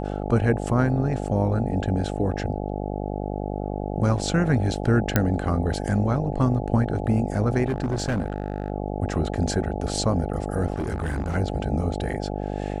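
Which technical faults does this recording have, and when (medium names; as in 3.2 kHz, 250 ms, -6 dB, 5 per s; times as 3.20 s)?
buzz 50 Hz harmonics 17 -29 dBFS
5.16 s: pop -4 dBFS
7.68–8.70 s: clipped -20 dBFS
10.74–11.36 s: clipped -22.5 dBFS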